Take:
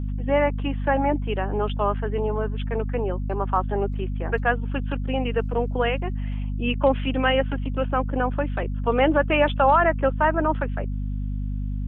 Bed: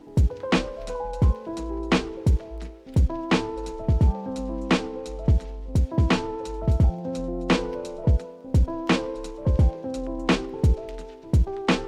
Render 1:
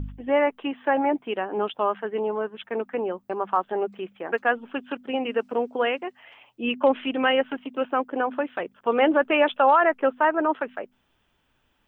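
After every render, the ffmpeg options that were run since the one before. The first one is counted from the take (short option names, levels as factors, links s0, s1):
-af "bandreject=f=50:t=h:w=4,bandreject=f=100:t=h:w=4,bandreject=f=150:t=h:w=4,bandreject=f=200:t=h:w=4,bandreject=f=250:t=h:w=4"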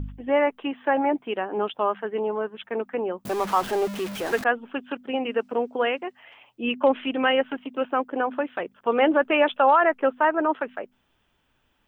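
-filter_complex "[0:a]asettb=1/sr,asplit=3[s0][s1][s2];[s0]atrim=end=3.254[s3];[s1]atrim=start=3.25:end=4.44,asetpts=PTS-STARTPTS,afade=t=in:d=0.004:c=qsin,afade=t=out:st=1.186:d=0.004:c=qsin,aeval=exprs='val(0)+0.5*0.0376*sgn(val(0))':c=same[s4];[s2]atrim=start=4.436[s5];[s3][s4]acrossfade=d=0.004:c1=hsin:c2=qsin[s6];[s6][s5]acrossfade=d=0.004:c1=qsin:c2=hsin"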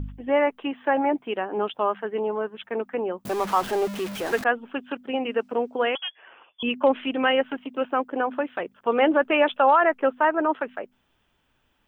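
-filter_complex "[0:a]asettb=1/sr,asplit=3[s0][s1][s2];[s0]atrim=end=5.954[s3];[s1]atrim=start=5.95:end=6.63,asetpts=PTS-STARTPTS,afade=t=in:d=0.004:c=qsin,afade=t=out:st=0.676:d=0.004:c=qsin,lowpass=f=3100:t=q:w=0.5098,lowpass=f=3100:t=q:w=0.6013,lowpass=f=3100:t=q:w=0.9,lowpass=f=3100:t=q:w=2.563,afreqshift=-3600[s4];[s2]atrim=start=6.626[s5];[s3][s4]acrossfade=d=0.004:c1=hsin:c2=qsin[s6];[s6][s5]acrossfade=d=0.004:c1=qsin:c2=hsin"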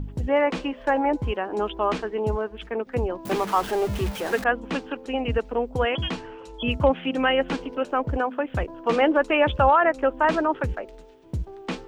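-filter_complex "[1:a]volume=0.335[s0];[0:a][s0]amix=inputs=2:normalize=0"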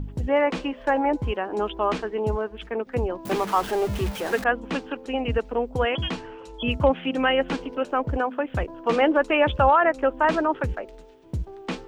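-af anull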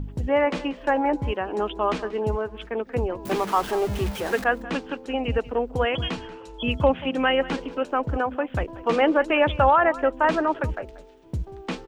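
-af "aecho=1:1:185:0.126"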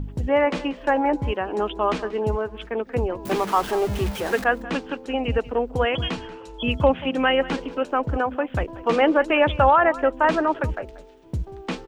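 -af "volume=1.19"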